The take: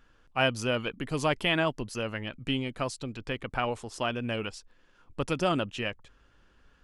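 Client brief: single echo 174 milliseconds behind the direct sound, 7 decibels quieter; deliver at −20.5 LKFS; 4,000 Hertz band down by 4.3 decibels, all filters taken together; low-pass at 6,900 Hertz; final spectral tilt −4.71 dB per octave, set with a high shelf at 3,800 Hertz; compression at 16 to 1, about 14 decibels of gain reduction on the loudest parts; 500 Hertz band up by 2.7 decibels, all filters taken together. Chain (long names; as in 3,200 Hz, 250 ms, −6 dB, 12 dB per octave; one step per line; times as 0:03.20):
low-pass filter 6,900 Hz
parametric band 500 Hz +3.5 dB
high-shelf EQ 3,800 Hz −5 dB
parametric band 4,000 Hz −3.5 dB
downward compressor 16 to 1, threshold −34 dBFS
single-tap delay 174 ms −7 dB
level +19 dB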